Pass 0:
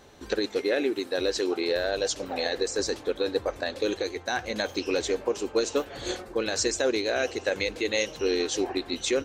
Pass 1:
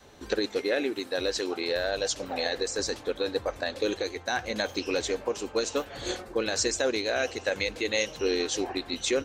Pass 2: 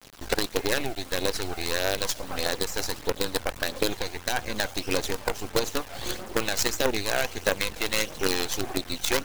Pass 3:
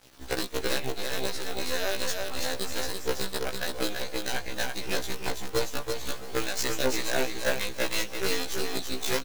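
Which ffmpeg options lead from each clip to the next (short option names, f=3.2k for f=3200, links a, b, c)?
-af "adynamicequalizer=threshold=0.01:dfrequency=370:dqfactor=2:tfrequency=370:tqfactor=2:attack=5:release=100:ratio=0.375:range=3:mode=cutabove:tftype=bell"
-filter_complex "[0:a]asplit=2[a][b];[b]acompressor=threshold=-36dB:ratio=12,volume=1dB[c];[a][c]amix=inputs=2:normalize=0,acrusher=bits=4:dc=4:mix=0:aa=0.000001,aphaser=in_gain=1:out_gain=1:delay=1.5:decay=0.33:speed=1.6:type=triangular"
-filter_complex "[0:a]aecho=1:1:333|666|999:0.668|0.154|0.0354,asplit=2[a][b];[b]acrusher=bits=2:mix=0:aa=0.5,volume=-12dB[c];[a][c]amix=inputs=2:normalize=0,afftfilt=real='re*1.73*eq(mod(b,3),0)':imag='im*1.73*eq(mod(b,3),0)':win_size=2048:overlap=0.75,volume=-3.5dB"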